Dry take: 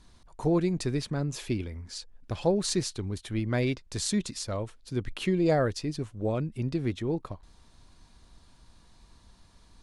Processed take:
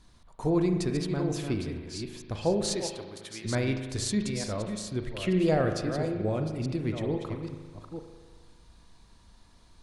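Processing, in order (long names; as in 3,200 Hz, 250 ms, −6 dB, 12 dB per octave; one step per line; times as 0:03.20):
delay that plays each chunk backwards 444 ms, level −7 dB
0:02.75–0:03.44: high-pass filter 430 Hz → 1,400 Hz 6 dB per octave
on a send: convolution reverb RT60 1.5 s, pre-delay 38 ms, DRR 6 dB
on the sum: level −1.5 dB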